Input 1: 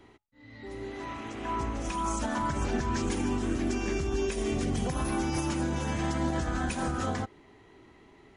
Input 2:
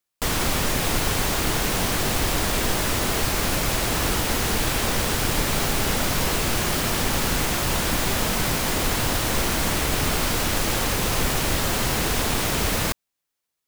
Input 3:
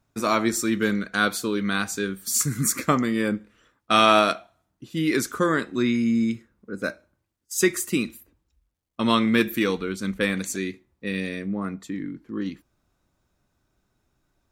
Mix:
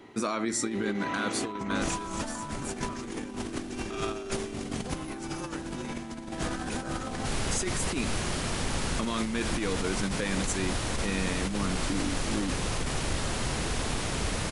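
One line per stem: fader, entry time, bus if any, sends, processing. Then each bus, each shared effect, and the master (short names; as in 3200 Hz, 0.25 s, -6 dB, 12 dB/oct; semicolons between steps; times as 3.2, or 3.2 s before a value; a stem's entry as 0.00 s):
+2.5 dB, 0.00 s, no bus, no send, HPF 160 Hz 12 dB/oct
-11.0 dB, 1.60 s, bus A, no send, dry
-3.0 dB, 0.00 s, bus A, no send, bell 68 Hz -10 dB 1.7 oct; compressor 4:1, threshold -23 dBFS, peak gain reduction 9.5 dB
bus A: 0.0 dB, brick-wall FIR low-pass 11000 Hz; limiter -22 dBFS, peak gain reduction 10 dB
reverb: off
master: low shelf 290 Hz +3.5 dB; negative-ratio compressor -30 dBFS, ratio -0.5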